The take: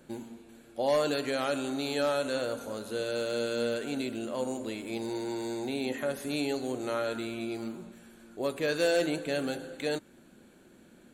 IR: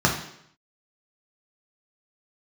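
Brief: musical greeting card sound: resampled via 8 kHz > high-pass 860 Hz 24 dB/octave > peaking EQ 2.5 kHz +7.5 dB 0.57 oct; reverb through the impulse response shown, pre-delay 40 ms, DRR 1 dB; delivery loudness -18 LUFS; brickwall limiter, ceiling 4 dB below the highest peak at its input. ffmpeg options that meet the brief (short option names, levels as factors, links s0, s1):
-filter_complex "[0:a]alimiter=limit=0.075:level=0:latency=1,asplit=2[s0][s1];[1:a]atrim=start_sample=2205,adelay=40[s2];[s1][s2]afir=irnorm=-1:irlink=0,volume=0.126[s3];[s0][s3]amix=inputs=2:normalize=0,aresample=8000,aresample=44100,highpass=f=860:w=0.5412,highpass=f=860:w=1.3066,equalizer=f=2500:t=o:w=0.57:g=7.5,volume=7.94"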